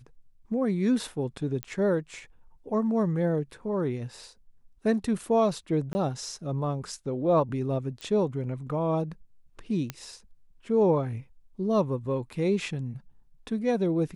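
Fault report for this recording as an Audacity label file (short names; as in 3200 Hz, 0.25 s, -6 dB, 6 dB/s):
1.630000	1.630000	pop -17 dBFS
5.930000	5.950000	gap 20 ms
8.010000	8.010000	pop -24 dBFS
9.900000	9.900000	pop -17 dBFS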